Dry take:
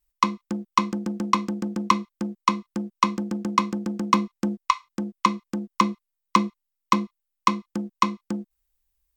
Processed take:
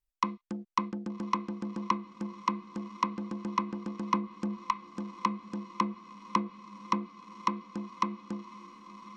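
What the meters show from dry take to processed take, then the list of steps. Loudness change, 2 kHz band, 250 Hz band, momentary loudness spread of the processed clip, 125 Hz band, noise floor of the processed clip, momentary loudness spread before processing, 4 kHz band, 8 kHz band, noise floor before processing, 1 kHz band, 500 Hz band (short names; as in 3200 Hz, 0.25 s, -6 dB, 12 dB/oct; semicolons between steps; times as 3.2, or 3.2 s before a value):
-9.0 dB, -10.5 dB, -8.5 dB, 9 LU, -8.5 dB, -61 dBFS, 9 LU, -12.5 dB, -14.0 dB, -82 dBFS, -8.5 dB, -8.5 dB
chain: diffused feedback echo 1.138 s, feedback 57%, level -15.5 dB; treble ducked by the level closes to 1900 Hz, closed at -17.5 dBFS; high shelf 5400 Hz -5 dB; gain -8.5 dB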